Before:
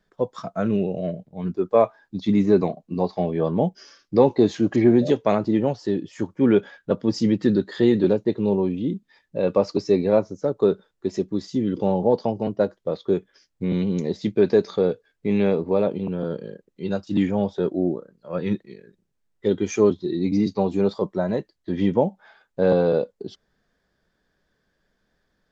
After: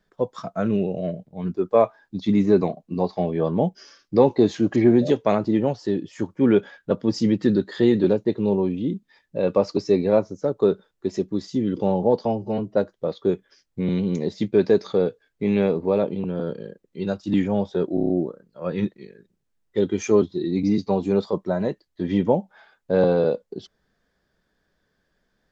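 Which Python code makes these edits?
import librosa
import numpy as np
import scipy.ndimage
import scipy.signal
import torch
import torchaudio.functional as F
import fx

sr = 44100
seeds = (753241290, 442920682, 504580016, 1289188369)

y = fx.edit(x, sr, fx.stretch_span(start_s=12.25, length_s=0.33, factor=1.5),
    fx.stutter(start_s=17.78, slice_s=0.03, count=6), tone=tone)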